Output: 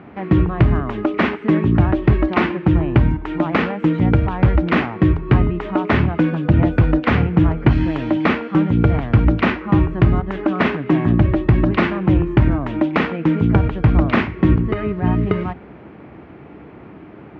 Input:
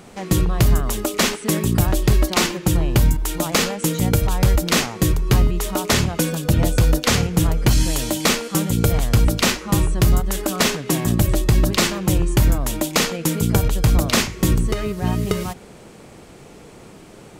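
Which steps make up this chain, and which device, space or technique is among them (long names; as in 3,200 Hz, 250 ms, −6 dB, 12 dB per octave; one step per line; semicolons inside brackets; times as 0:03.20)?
bass cabinet (loudspeaker in its box 62–2,300 Hz, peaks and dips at 63 Hz +6 dB, 300 Hz +6 dB, 500 Hz −5 dB)
level +3 dB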